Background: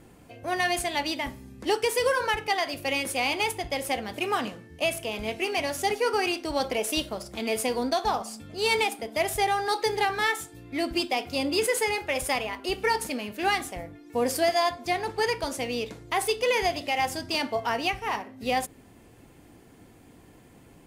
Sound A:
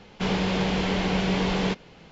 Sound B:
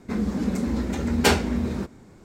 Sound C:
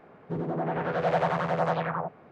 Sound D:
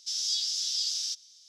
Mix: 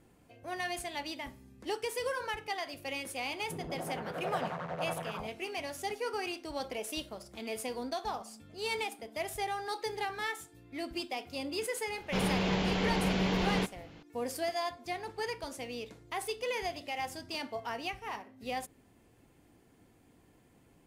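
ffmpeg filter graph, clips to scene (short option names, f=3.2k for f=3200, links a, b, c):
-filter_complex "[0:a]volume=-10.5dB[a];[3:a]atrim=end=2.31,asetpts=PTS-STARTPTS,volume=-11dB,afade=t=in:d=0.004:c=hsin,afade=t=out:st=2.306:d=0.004:c=hsin,adelay=3200[b];[1:a]atrim=end=2.11,asetpts=PTS-STARTPTS,volume=-5.5dB,afade=t=in:d=0.004:c=hsin,afade=t=out:st=2.106:d=0.004:c=hsin,adelay=11920[c];[a][b][c]amix=inputs=3:normalize=0"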